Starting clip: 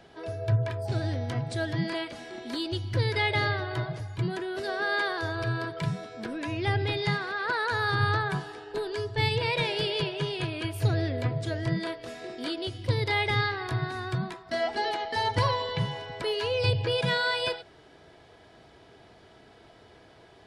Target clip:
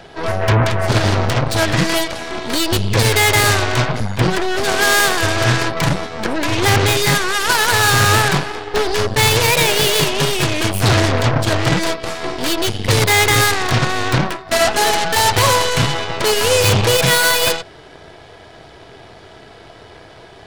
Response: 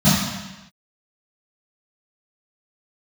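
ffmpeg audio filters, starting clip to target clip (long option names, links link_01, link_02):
-af "apsyclip=22.5dB,equalizer=frequency=240:width_type=o:width=0.77:gain=-4.5,aeval=exprs='1.19*(cos(1*acos(clip(val(0)/1.19,-1,1)))-cos(1*PI/2))+0.211*(cos(3*acos(clip(val(0)/1.19,-1,1)))-cos(3*PI/2))+0.0944*(cos(5*acos(clip(val(0)/1.19,-1,1)))-cos(5*PI/2))+0.376*(cos(6*acos(clip(val(0)/1.19,-1,1)))-cos(6*PI/2))+0.473*(cos(8*acos(clip(val(0)/1.19,-1,1)))-cos(8*PI/2))':channel_layout=same,volume=-7dB"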